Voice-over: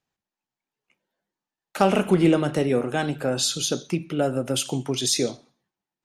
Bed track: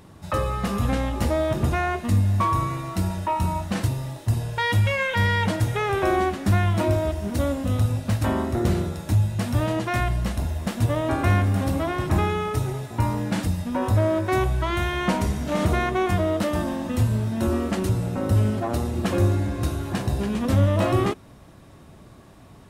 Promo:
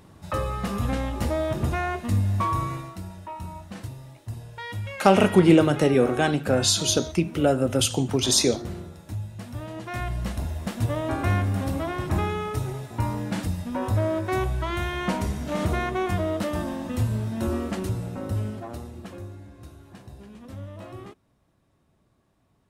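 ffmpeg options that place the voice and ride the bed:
-filter_complex "[0:a]adelay=3250,volume=1.33[s0];[1:a]volume=2,afade=t=out:st=2.75:d=0.23:silence=0.334965,afade=t=in:st=9.71:d=0.59:silence=0.354813,afade=t=out:st=17.55:d=1.7:silence=0.158489[s1];[s0][s1]amix=inputs=2:normalize=0"

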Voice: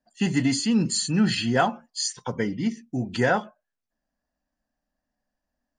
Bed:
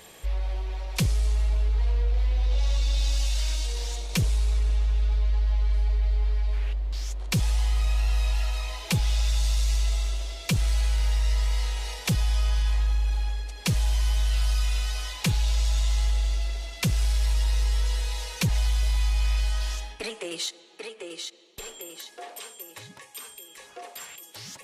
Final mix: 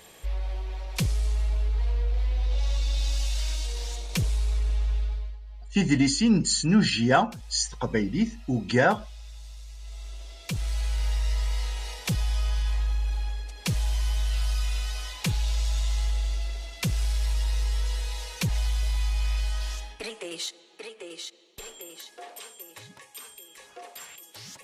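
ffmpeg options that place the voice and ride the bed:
-filter_complex "[0:a]adelay=5550,volume=1.12[s0];[1:a]volume=5.31,afade=t=out:st=4.94:d=0.44:silence=0.141254,afade=t=in:st=9.78:d=1.3:silence=0.149624[s1];[s0][s1]amix=inputs=2:normalize=0"

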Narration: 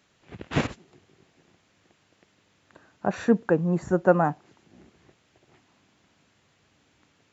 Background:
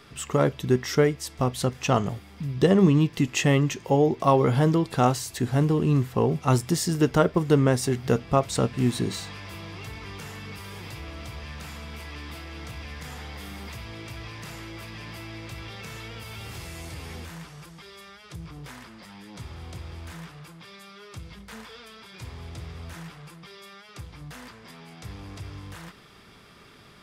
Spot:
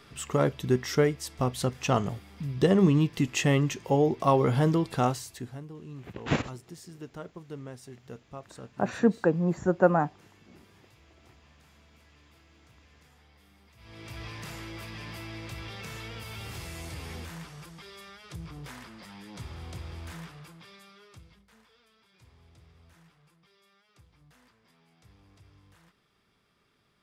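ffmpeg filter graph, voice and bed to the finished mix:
-filter_complex "[0:a]adelay=5750,volume=0.794[s0];[1:a]volume=7.08,afade=t=out:st=4.89:d=0.72:silence=0.11885,afade=t=in:st=13.76:d=0.47:silence=0.1,afade=t=out:st=20.13:d=1.34:silence=0.133352[s1];[s0][s1]amix=inputs=2:normalize=0"

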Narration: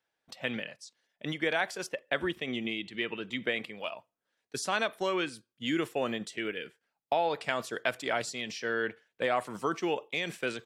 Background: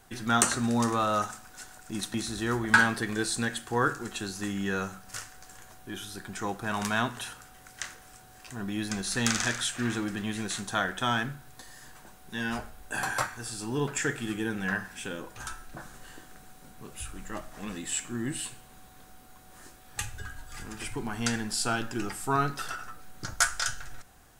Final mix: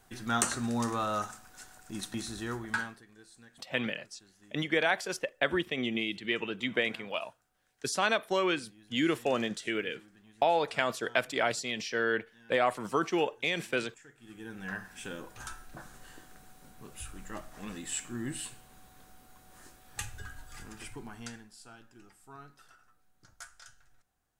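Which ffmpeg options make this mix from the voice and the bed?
-filter_complex "[0:a]adelay=3300,volume=1.26[s0];[1:a]volume=7.5,afade=t=out:st=2.3:d=0.73:silence=0.0841395,afade=t=in:st=14.16:d=0.96:silence=0.0749894,afade=t=out:st=20.42:d=1.09:silence=0.105925[s1];[s0][s1]amix=inputs=2:normalize=0"

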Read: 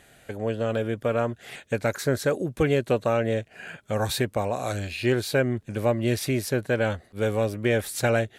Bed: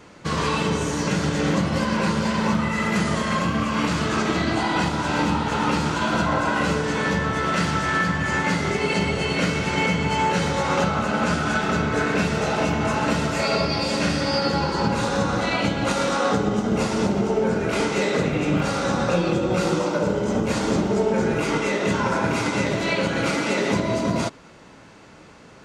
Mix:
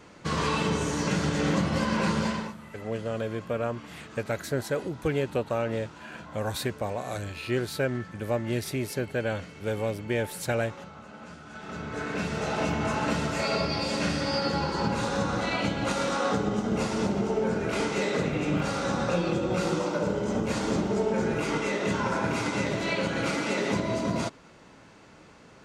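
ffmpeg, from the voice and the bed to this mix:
-filter_complex "[0:a]adelay=2450,volume=0.562[s0];[1:a]volume=4.73,afade=t=out:st=2.24:d=0.29:silence=0.112202,afade=t=in:st=11.5:d=1.15:silence=0.133352[s1];[s0][s1]amix=inputs=2:normalize=0"

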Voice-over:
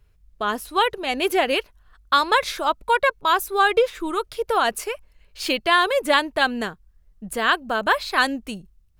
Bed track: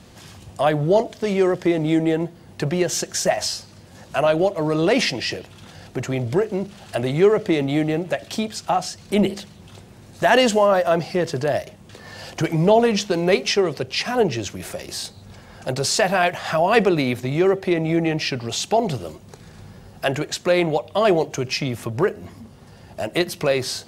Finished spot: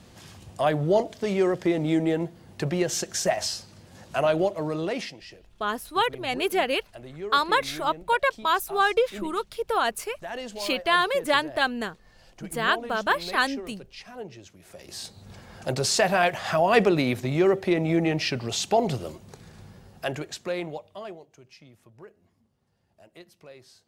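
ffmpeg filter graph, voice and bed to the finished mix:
-filter_complex "[0:a]adelay=5200,volume=0.631[s0];[1:a]volume=4.22,afade=t=out:st=4.39:d=0.79:silence=0.16788,afade=t=in:st=14.65:d=0.69:silence=0.141254,afade=t=out:st=19.11:d=2.08:silence=0.0595662[s1];[s0][s1]amix=inputs=2:normalize=0"

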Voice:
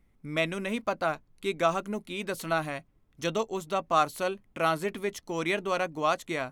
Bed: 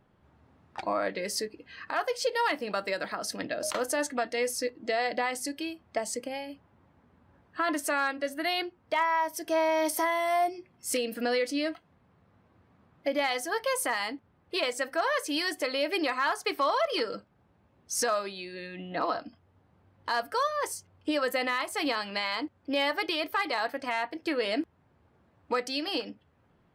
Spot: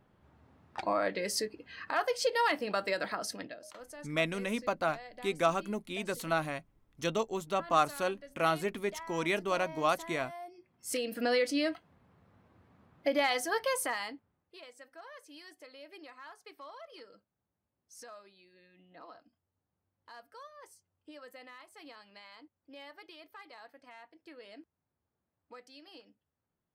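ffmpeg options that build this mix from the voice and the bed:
-filter_complex "[0:a]adelay=3800,volume=0.75[s0];[1:a]volume=7.5,afade=t=out:st=3.13:d=0.48:silence=0.125893,afade=t=in:st=10.46:d=0.9:silence=0.11885,afade=t=out:st=13.47:d=1.06:silence=0.0841395[s1];[s0][s1]amix=inputs=2:normalize=0"

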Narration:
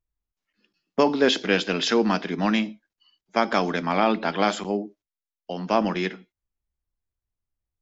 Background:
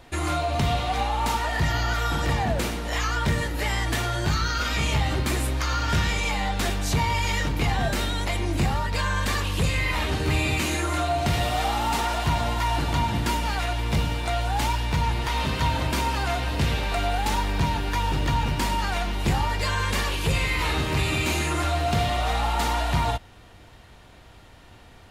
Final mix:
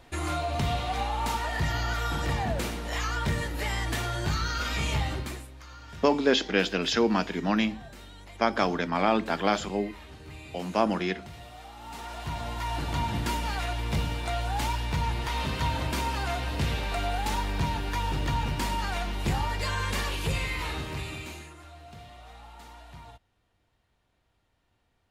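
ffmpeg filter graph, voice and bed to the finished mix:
-filter_complex "[0:a]adelay=5050,volume=0.708[s0];[1:a]volume=3.98,afade=t=out:st=5:d=0.47:silence=0.149624,afade=t=in:st=11.76:d=1.38:silence=0.149624,afade=t=out:st=20.18:d=1.37:silence=0.112202[s1];[s0][s1]amix=inputs=2:normalize=0"

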